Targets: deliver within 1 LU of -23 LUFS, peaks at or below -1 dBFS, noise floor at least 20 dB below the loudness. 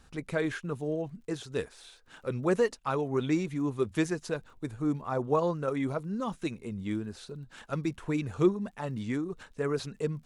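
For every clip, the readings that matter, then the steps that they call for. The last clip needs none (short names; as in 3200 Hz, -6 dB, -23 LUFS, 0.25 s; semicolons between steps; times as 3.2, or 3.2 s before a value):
ticks 37/s; loudness -32.0 LUFS; peak -13.0 dBFS; loudness target -23.0 LUFS
-> de-click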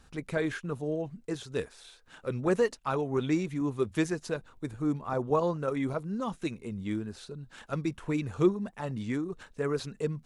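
ticks 0.097/s; loudness -32.0 LUFS; peak -13.0 dBFS; loudness target -23.0 LUFS
-> gain +9 dB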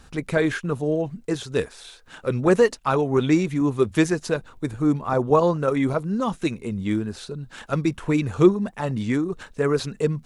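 loudness -23.0 LUFS; peak -4.0 dBFS; noise floor -51 dBFS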